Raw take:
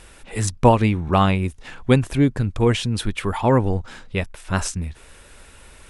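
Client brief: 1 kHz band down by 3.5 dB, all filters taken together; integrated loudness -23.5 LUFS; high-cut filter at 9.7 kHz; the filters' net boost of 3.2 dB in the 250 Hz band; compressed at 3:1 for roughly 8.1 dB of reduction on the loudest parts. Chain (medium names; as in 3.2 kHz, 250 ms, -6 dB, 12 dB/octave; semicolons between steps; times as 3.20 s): low-pass 9.7 kHz; peaking EQ 250 Hz +4 dB; peaking EQ 1 kHz -4.5 dB; compression 3:1, threshold -18 dBFS; trim +1 dB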